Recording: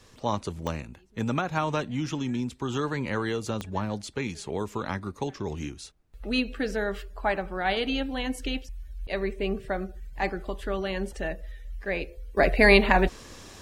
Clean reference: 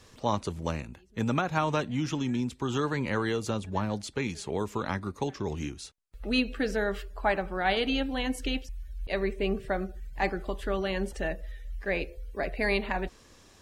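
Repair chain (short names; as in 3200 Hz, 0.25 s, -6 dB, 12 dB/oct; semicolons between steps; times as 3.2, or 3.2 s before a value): de-click; expander -38 dBFS, range -21 dB; gain correction -10.5 dB, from 12.37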